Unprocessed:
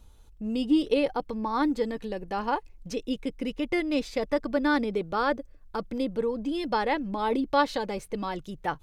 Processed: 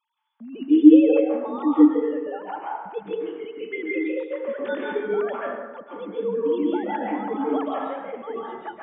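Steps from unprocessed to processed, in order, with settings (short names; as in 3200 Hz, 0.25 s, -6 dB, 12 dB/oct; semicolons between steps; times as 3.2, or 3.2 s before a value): sine-wave speech; plate-style reverb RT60 1.2 s, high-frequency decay 0.5×, pre-delay 0.12 s, DRR -4.5 dB; gain -2 dB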